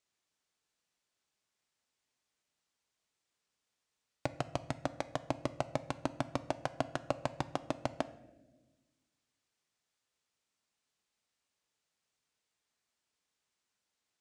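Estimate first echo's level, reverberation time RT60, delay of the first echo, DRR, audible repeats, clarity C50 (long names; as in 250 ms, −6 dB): no echo audible, 1.2 s, no echo audible, 12.0 dB, no echo audible, 16.0 dB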